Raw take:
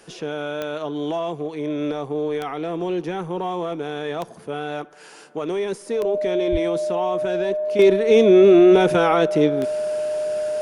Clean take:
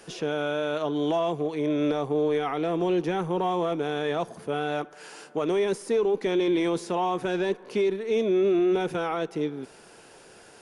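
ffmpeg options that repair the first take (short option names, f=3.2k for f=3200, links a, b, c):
-filter_complex "[0:a]adeclick=t=4,bandreject=f=610:w=30,asplit=3[a][b][c];[a]afade=t=out:st=6.51:d=0.02[d];[b]highpass=f=140:w=0.5412,highpass=f=140:w=1.3066,afade=t=in:st=6.51:d=0.02,afade=t=out:st=6.63:d=0.02[e];[c]afade=t=in:st=6.63:d=0.02[f];[d][e][f]amix=inputs=3:normalize=0,asetnsamples=n=441:p=0,asendcmd='7.79 volume volume -10.5dB',volume=0dB"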